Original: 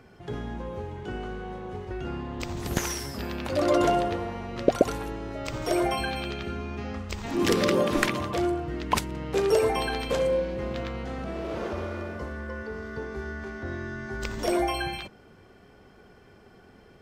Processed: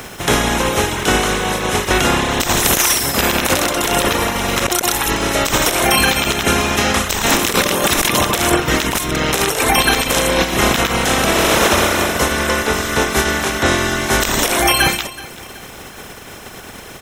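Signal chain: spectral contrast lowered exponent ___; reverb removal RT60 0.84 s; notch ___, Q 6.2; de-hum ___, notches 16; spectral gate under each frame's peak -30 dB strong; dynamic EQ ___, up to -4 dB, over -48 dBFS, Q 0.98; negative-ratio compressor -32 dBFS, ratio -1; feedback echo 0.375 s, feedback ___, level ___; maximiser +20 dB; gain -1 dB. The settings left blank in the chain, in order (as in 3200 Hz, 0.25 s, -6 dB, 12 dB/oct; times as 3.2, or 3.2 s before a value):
0.42, 4600 Hz, 355.1 Hz, 110 Hz, 39%, -19 dB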